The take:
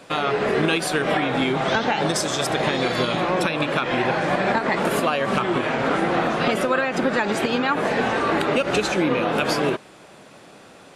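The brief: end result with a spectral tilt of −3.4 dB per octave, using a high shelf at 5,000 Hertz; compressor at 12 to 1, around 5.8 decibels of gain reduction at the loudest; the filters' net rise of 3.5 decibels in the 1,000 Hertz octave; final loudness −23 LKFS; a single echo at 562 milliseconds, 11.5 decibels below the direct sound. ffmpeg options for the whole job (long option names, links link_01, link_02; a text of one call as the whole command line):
ffmpeg -i in.wav -af "equalizer=frequency=1000:width_type=o:gain=5,highshelf=frequency=5000:gain=-7.5,acompressor=threshold=-20dB:ratio=12,aecho=1:1:562:0.266,volume=1dB" out.wav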